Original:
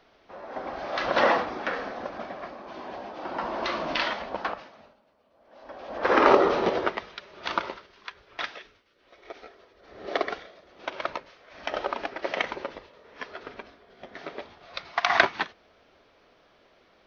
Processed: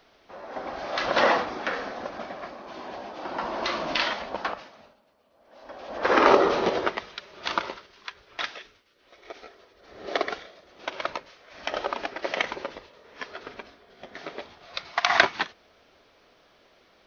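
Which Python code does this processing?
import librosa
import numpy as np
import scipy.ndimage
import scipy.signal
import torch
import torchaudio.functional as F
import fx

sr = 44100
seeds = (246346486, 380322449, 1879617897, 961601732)

y = fx.high_shelf(x, sr, hz=4500.0, db=8.5)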